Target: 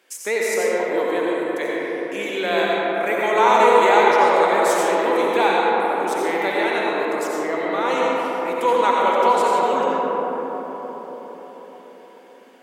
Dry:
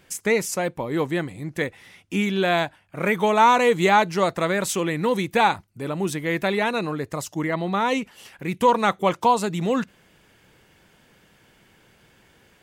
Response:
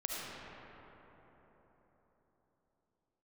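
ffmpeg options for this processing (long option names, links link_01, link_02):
-filter_complex "[0:a]highpass=frequency=310:width=0.5412,highpass=frequency=310:width=1.3066[link_01];[1:a]atrim=start_sample=2205,asetrate=36162,aresample=44100[link_02];[link_01][link_02]afir=irnorm=-1:irlink=0,volume=-1dB"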